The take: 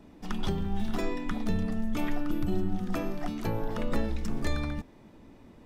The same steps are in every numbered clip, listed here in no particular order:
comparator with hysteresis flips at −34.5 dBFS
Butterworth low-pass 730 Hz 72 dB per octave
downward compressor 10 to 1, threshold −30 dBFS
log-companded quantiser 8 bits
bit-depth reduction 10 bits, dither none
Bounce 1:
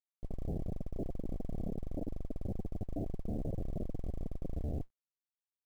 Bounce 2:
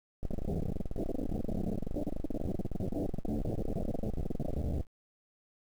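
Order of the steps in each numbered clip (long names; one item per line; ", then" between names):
downward compressor, then bit-depth reduction, then comparator with hysteresis, then Butterworth low-pass, then log-companded quantiser
comparator with hysteresis, then Butterworth low-pass, then log-companded quantiser, then downward compressor, then bit-depth reduction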